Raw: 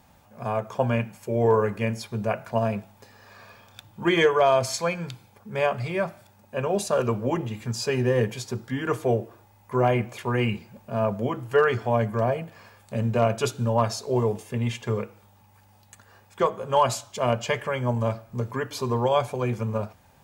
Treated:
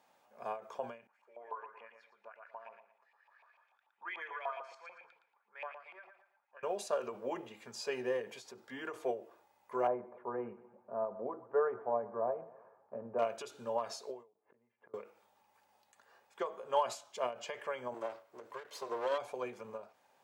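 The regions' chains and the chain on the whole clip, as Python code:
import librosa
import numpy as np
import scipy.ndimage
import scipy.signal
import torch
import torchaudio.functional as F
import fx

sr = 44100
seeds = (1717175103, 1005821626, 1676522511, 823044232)

y = fx.chain(x, sr, fx.filter_lfo_bandpass(shape='saw_up', hz=6.8, low_hz=800.0, high_hz=2700.0, q=5.0),
    fx.echo_feedback(ms=115, feedback_pct=27, wet_db=-8.5), at=(1.07, 6.63))
y = fx.chain(y, sr, fx.lowpass(hz=1200.0, slope=24),
    fx.echo_feedback(ms=123, feedback_pct=48, wet_db=-18.0), at=(9.87, 13.19))
y = fx.chain(y, sr, fx.lowpass(hz=1700.0, slope=24),
    fx.gate_flip(shuts_db=-28.0, range_db=-28), at=(14.33, 14.94))
y = fx.chain(y, sr, fx.lower_of_two(delay_ms=1.9),
    fx.low_shelf(hz=120.0, db=-10.5), at=(17.94, 19.18))
y = scipy.signal.sosfilt(scipy.signal.cheby1(2, 1.0, 470.0, 'highpass', fs=sr, output='sos'), y)
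y = fx.high_shelf(y, sr, hz=9100.0, db=-8.5)
y = fx.end_taper(y, sr, db_per_s=160.0)
y = F.gain(torch.from_numpy(y), -9.0).numpy()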